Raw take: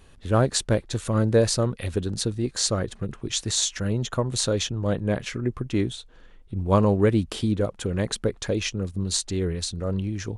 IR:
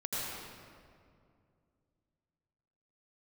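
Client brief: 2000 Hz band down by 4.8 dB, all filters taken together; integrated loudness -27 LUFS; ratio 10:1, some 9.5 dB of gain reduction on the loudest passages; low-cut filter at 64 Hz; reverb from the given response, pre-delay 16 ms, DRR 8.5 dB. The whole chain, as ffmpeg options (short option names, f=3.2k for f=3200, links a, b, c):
-filter_complex "[0:a]highpass=64,equalizer=f=2k:t=o:g=-6.5,acompressor=threshold=-24dB:ratio=10,asplit=2[a][b];[1:a]atrim=start_sample=2205,adelay=16[c];[b][c]afir=irnorm=-1:irlink=0,volume=-13.5dB[d];[a][d]amix=inputs=2:normalize=0,volume=2.5dB"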